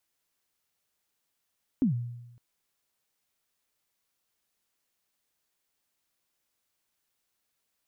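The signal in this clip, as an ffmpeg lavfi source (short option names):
-f lavfi -i "aevalsrc='0.112*pow(10,-3*t/0.98)*sin(2*PI*(290*0.116/log(120/290)*(exp(log(120/290)*min(t,0.116)/0.116)-1)+120*max(t-0.116,0)))':d=0.56:s=44100"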